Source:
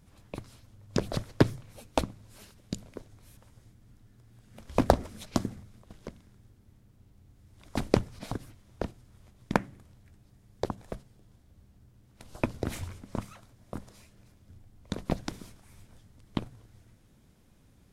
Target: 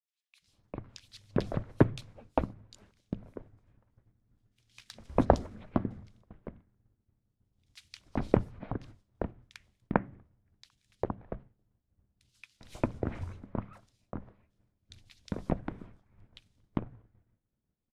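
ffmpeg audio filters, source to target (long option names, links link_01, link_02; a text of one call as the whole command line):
ffmpeg -i in.wav -filter_complex "[0:a]agate=range=-33dB:threshold=-46dB:ratio=3:detection=peak,aemphasis=mode=reproduction:type=75fm,acrossover=split=2700[link_01][link_02];[link_01]adelay=400[link_03];[link_03][link_02]amix=inputs=2:normalize=0,volume=-1.5dB" out.wav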